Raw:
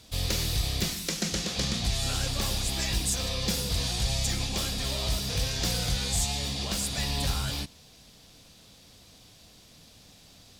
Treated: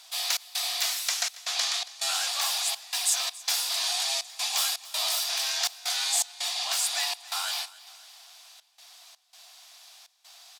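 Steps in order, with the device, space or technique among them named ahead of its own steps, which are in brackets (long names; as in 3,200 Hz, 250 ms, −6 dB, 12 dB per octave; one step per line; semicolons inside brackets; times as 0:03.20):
Chebyshev high-pass filter 700 Hz, order 5
0:04.27–0:05.24: high-shelf EQ 10,000 Hz +7.5 dB
trance gate with a delay (gate pattern "xx.xxxx." 82 BPM −24 dB; repeating echo 278 ms, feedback 47%, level −19.5 dB)
level +5 dB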